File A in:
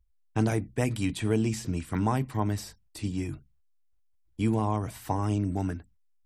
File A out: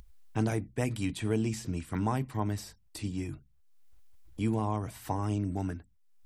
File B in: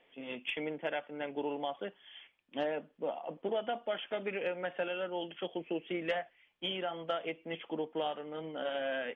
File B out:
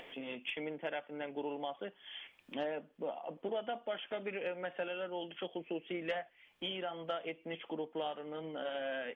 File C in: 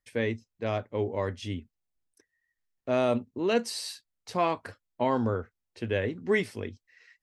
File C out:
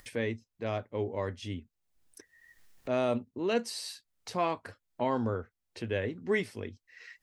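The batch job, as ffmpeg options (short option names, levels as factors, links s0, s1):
-af "acompressor=mode=upward:threshold=0.02:ratio=2.5,volume=0.668"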